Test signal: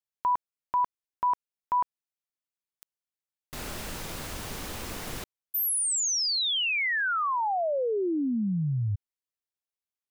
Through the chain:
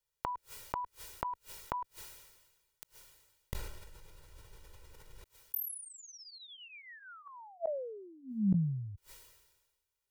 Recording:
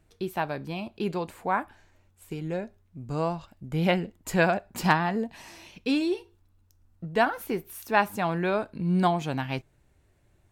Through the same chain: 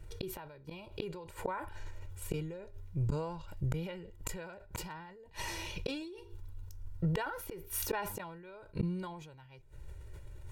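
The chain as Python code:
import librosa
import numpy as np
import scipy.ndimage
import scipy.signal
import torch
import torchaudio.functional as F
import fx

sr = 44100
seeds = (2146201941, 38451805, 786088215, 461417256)

y = fx.low_shelf(x, sr, hz=88.0, db=11.5)
y = y + 0.91 * np.pad(y, (int(2.1 * sr / 1000.0), 0))[:len(y)]
y = fx.gate_flip(y, sr, shuts_db=-25.0, range_db=-32)
y = fx.sustainer(y, sr, db_per_s=46.0)
y = F.gain(torch.from_numpy(y), 3.5).numpy()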